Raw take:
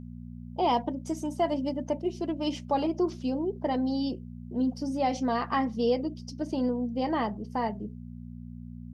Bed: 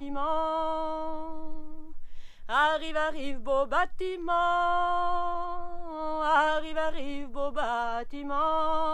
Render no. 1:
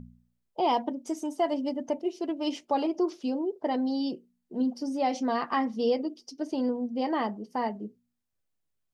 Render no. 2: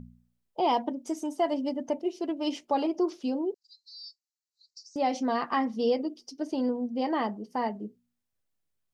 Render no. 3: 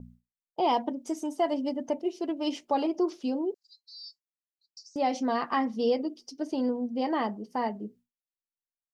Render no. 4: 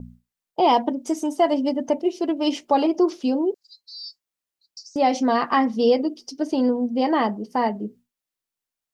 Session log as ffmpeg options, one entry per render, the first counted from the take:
-af "bandreject=f=60:t=h:w=4,bandreject=f=120:t=h:w=4,bandreject=f=180:t=h:w=4,bandreject=f=240:t=h:w=4"
-filter_complex "[0:a]asettb=1/sr,asplit=3[a][b][c];[a]atrim=end=3.544[d];[b]atrim=start=3.54:end=4.96,asetpts=PTS-STARTPTS,afade=t=in:d=0.004:c=qsin,afade=t=out:st=1.416:d=0.004:c=qsin,asuperpass=centerf=5600:order=20:qfactor=1.4[e];[c]atrim=start=4.956[f];[d][e]acrossfade=d=0.004:c1=hsin:c2=qsin[g];[g][f]acrossfade=d=0.004:c1=qsin:c2=hsin"
-af "agate=range=-33dB:threshold=-51dB:ratio=3:detection=peak"
-af "volume=8dB"

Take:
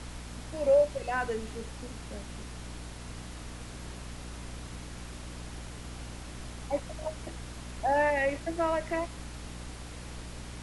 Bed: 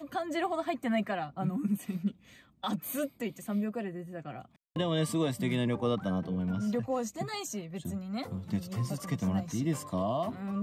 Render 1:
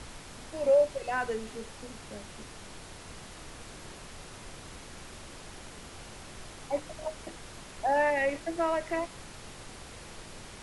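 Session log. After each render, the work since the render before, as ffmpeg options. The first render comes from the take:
-af "bandreject=f=60:t=h:w=6,bandreject=f=120:t=h:w=6,bandreject=f=180:t=h:w=6,bandreject=f=240:t=h:w=6,bandreject=f=300:t=h:w=6"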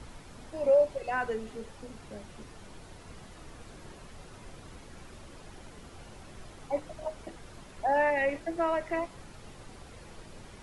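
-af "afftdn=nr=8:nf=-47"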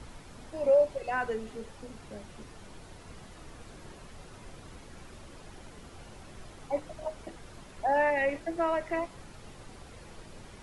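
-af anull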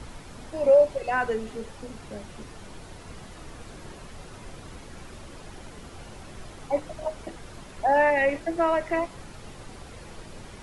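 -af "volume=5.5dB"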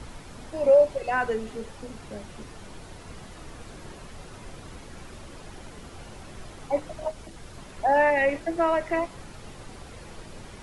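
-filter_complex "[0:a]asettb=1/sr,asplit=3[a][b][c];[a]atrim=end=7.114[d];[b]atrim=start=7.11:end=7.58,asetpts=PTS-STARTPTS,afade=t=in:d=0.004:c=qsin,afade=t=out:st=0.466:d=0.004:c=qsin,acrossover=split=220|3000[e][f][g];[f]acompressor=threshold=-46dB:ratio=4:attack=3.2:release=140:knee=2.83:detection=peak[h];[e][h][g]amix=inputs=3:normalize=0[i];[c]atrim=start=7.576[j];[d][i]acrossfade=d=0.004:c1=hsin:c2=qsin[k];[k][j]acrossfade=d=0.004:c1=qsin:c2=hsin"

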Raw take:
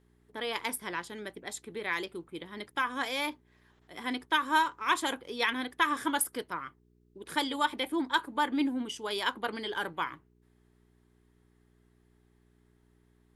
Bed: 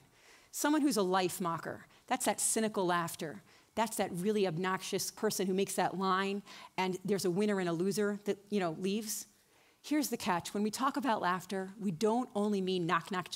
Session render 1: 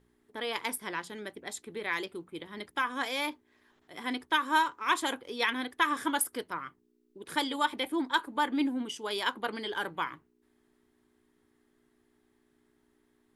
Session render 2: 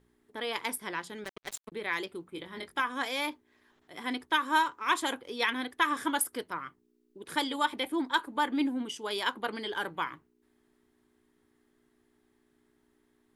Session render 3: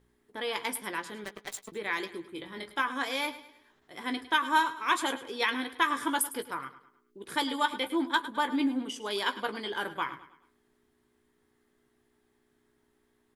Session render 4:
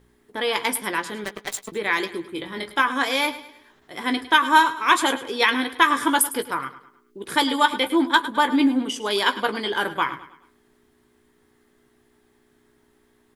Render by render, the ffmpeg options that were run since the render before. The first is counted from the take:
-af "bandreject=f=60:t=h:w=4,bandreject=f=120:t=h:w=4,bandreject=f=180:t=h:w=4"
-filter_complex "[0:a]asettb=1/sr,asplit=3[a][b][c];[a]atrim=end=1.244[d];[b]atrim=start=1.24:end=1.72,asetpts=PTS-STARTPTS,afade=t=in:d=0.004:c=qsin,afade=t=out:st=0.476:d=0.004:c=qsin,acrusher=bits=5:mix=0:aa=0.5[e];[c]atrim=start=1.716[f];[d][e]acrossfade=d=0.004:c1=hsin:c2=qsin[g];[g][f]acrossfade=d=0.004:c1=qsin:c2=hsin,asettb=1/sr,asplit=3[h][i][j];[h]atrim=end=2.304[k];[i]atrim=start=2.3:end=2.8,asetpts=PTS-STARTPTS,afade=t=in:d=0.004:c=qsin,afade=t=out:st=0.496:d=0.004:c=qsin,asplit=2[l][m];[m]adelay=22,volume=-5dB[n];[l][n]amix=inputs=2:normalize=0,atrim=end_sample=22050[o];[j]atrim=start=2.796[p];[k][o]acrossfade=d=0.004:c1=hsin:c2=qsin[q];[q][p]acrossfade=d=0.004:c1=qsin:c2=hsin"
-filter_complex "[0:a]asplit=2[a][b];[b]adelay=15,volume=-9dB[c];[a][c]amix=inputs=2:normalize=0,aecho=1:1:105|210|315|420:0.178|0.0747|0.0314|0.0132"
-af "volume=9.5dB"

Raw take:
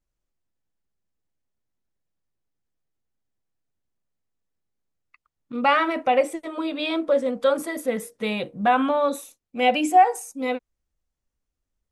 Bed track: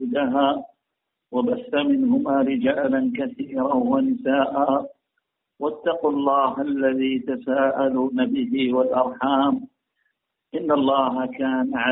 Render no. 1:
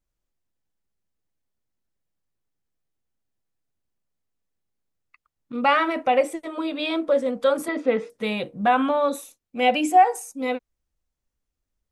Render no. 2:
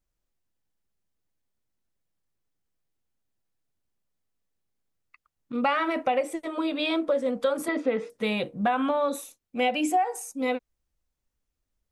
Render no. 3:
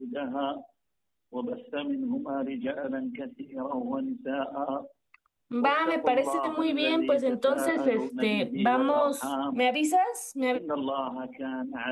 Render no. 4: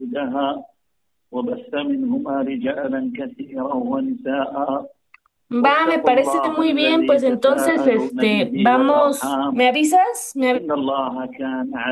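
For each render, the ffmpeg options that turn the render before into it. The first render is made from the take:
-filter_complex "[0:a]asettb=1/sr,asplit=3[a][b][c];[a]atrim=end=7.684[d];[b]atrim=start=7.68:end=8.1,asetpts=PTS-STARTPTS,afade=t=in:d=0.004:c=qsin,afade=t=out:st=0.416:d=0.004:c=qsin,highpass=170,equalizer=f=280:t=q:w=4:g=7,equalizer=f=440:t=q:w=4:g=6,equalizer=f=850:t=q:w=4:g=6,equalizer=f=1.3k:t=q:w=4:g=7,equalizer=f=2.5k:t=q:w=4:g=7,lowpass=f=4.7k:w=0.5412,lowpass=f=4.7k:w=1.3066[e];[c]atrim=start=8.096[f];[d][e]acrossfade=d=0.004:c1=hsin:c2=qsin[g];[g][f]acrossfade=d=0.004:c1=qsin:c2=hsin"
-af "acompressor=threshold=-21dB:ratio=6"
-filter_complex "[1:a]volume=-11.5dB[a];[0:a][a]amix=inputs=2:normalize=0"
-af "volume=9.5dB"

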